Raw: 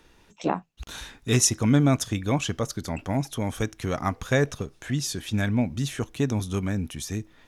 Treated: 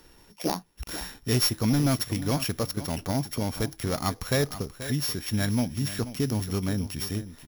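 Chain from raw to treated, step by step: sorted samples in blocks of 8 samples; treble shelf 8.2 kHz +5.5 dB; in parallel at -1 dB: compression, threshold -31 dBFS, peak gain reduction 17 dB; on the sum: overload inside the chain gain 13.5 dB; on a send: delay 483 ms -13.5 dB; on the sum: trim -4 dB

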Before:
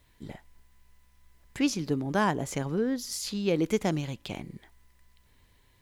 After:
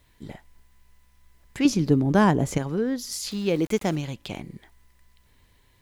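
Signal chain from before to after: 1.65–2.58 s: bass shelf 470 Hz +9 dB; 3.31–3.96 s: small samples zeroed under -44 dBFS; trim +2.5 dB

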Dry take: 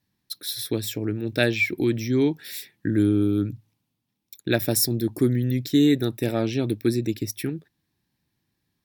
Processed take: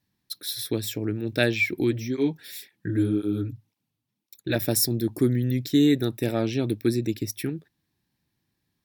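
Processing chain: 1.91–4.56 s: cancelling through-zero flanger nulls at 1.9 Hz, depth 5.7 ms; trim -1 dB

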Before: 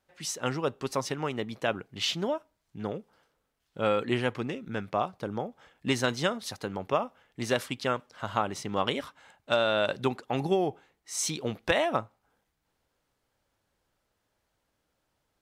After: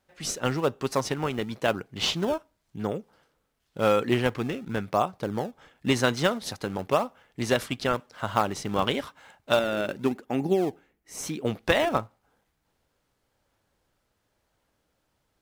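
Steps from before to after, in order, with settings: 9.59–11.45 s: graphic EQ 125/250/500/1000/4000/8000 Hz -7/+4/-3/-8/-10/-7 dB; in parallel at -12 dB: decimation with a swept rate 26×, swing 160% 0.94 Hz; on the sum: trim +2.5 dB

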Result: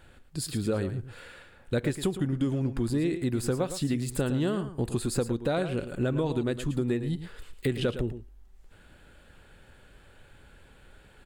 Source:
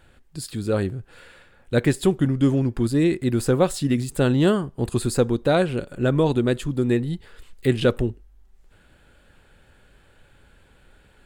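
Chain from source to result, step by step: compression 5:1, threshold -25 dBFS, peak gain reduction 11.5 dB; on a send: delay 111 ms -11 dB

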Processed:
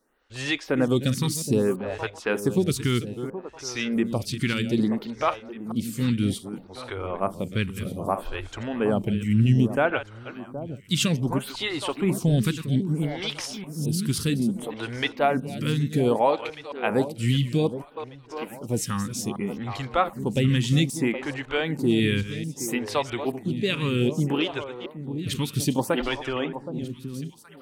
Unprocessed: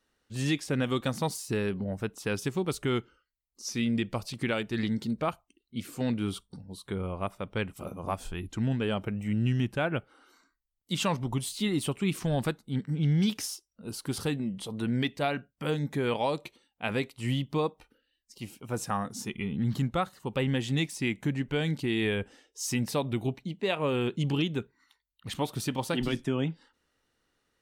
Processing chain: chunks repeated in reverse 220 ms, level -11.5 dB; echo whose repeats swap between lows and highs 771 ms, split 1.1 kHz, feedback 51%, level -11 dB; lamp-driven phase shifter 0.62 Hz; trim +8.5 dB

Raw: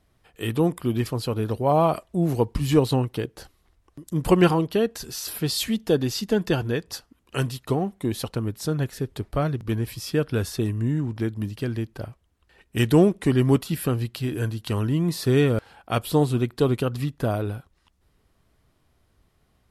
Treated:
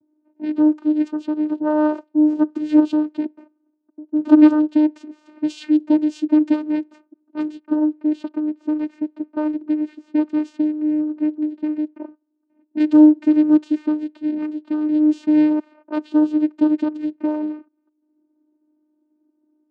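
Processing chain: level-controlled noise filter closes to 540 Hz, open at -19 dBFS; tone controls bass +13 dB, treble -2 dB; vocoder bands 8, saw 304 Hz; trim -2.5 dB

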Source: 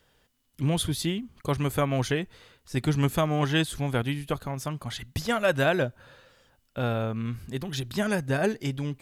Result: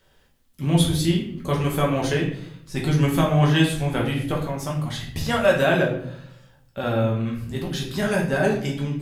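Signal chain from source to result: simulated room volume 110 m³, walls mixed, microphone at 1.1 m

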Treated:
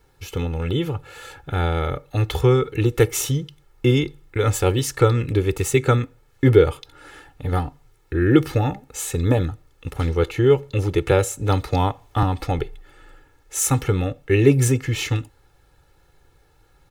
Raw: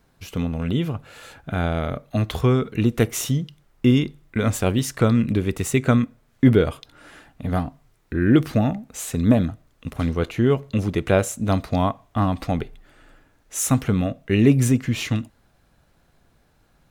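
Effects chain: comb 2.3 ms, depth 91%; 11.11–12.23 s: three bands compressed up and down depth 40%

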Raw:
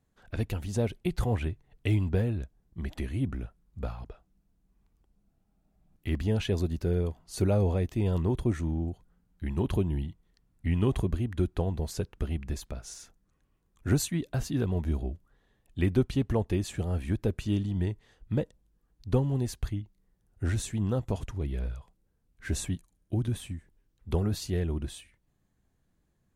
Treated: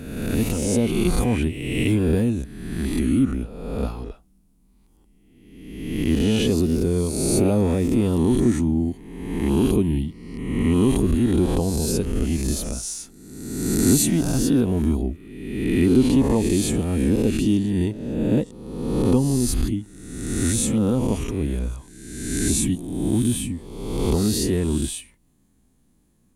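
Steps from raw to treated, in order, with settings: reverse spectral sustain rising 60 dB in 1.25 s; fifteen-band graphic EQ 100 Hz -5 dB, 250 Hz +8 dB, 630 Hz -4 dB, 1.6 kHz -6 dB, 10 kHz +10 dB; in parallel at +1 dB: peak limiter -19.5 dBFS, peak gain reduction 10 dB

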